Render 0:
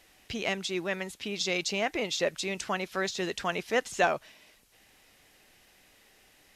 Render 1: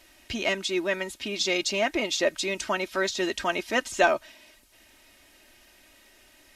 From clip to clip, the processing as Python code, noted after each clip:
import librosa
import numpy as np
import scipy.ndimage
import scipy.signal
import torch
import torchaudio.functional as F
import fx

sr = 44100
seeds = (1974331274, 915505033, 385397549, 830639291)

y = x + 0.67 * np.pad(x, (int(3.2 * sr / 1000.0), 0))[:len(x)]
y = F.gain(torch.from_numpy(y), 2.5).numpy()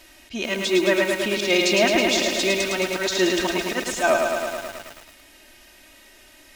y = fx.auto_swell(x, sr, attack_ms=124.0)
y = fx.hpss(y, sr, part='percussive', gain_db=-5)
y = fx.echo_crushed(y, sr, ms=108, feedback_pct=80, bits=8, wet_db=-3.5)
y = F.gain(torch.from_numpy(y), 8.0).numpy()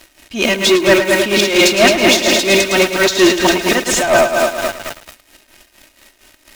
y = fx.leveller(x, sr, passes=3)
y = y * (1.0 - 0.71 / 2.0 + 0.71 / 2.0 * np.cos(2.0 * np.pi * 4.3 * (np.arange(len(y)) / sr)))
y = F.gain(torch.from_numpy(y), 4.5).numpy()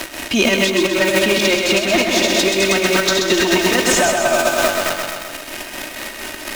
y = fx.over_compress(x, sr, threshold_db=-15.0, ratio=-0.5)
y = fx.echo_feedback(y, sr, ms=129, feedback_pct=45, wet_db=-6.0)
y = fx.band_squash(y, sr, depth_pct=70)
y = F.gain(torch.from_numpy(y), -1.0).numpy()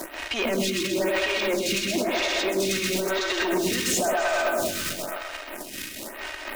y = np.clip(10.0 ** (15.0 / 20.0) * x, -1.0, 1.0) / 10.0 ** (15.0 / 20.0)
y = fx.stagger_phaser(y, sr, hz=0.99)
y = F.gain(torch.from_numpy(y), -3.5).numpy()